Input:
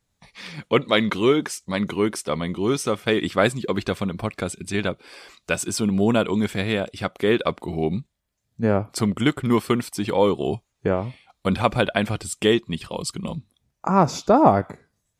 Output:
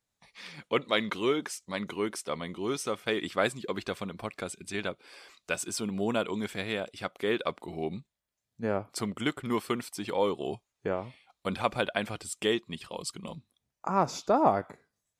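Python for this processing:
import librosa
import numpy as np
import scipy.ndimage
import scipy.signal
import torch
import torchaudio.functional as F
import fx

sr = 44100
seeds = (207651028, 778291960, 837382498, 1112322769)

y = fx.low_shelf(x, sr, hz=220.0, db=-10.0)
y = F.gain(torch.from_numpy(y), -7.0).numpy()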